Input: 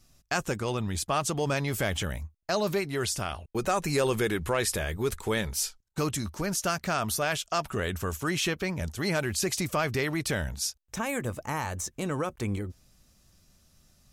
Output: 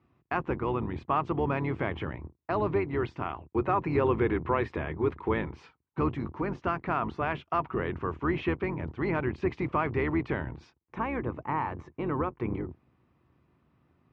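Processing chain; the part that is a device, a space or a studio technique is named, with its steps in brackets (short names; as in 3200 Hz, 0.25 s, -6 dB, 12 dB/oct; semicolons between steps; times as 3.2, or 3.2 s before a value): sub-octave bass pedal (octaver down 2 oct, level +4 dB; speaker cabinet 83–2200 Hz, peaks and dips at 100 Hz -7 dB, 190 Hz -6 dB, 340 Hz +5 dB, 590 Hz -6 dB, 1000 Hz +7 dB, 1600 Hz -5 dB)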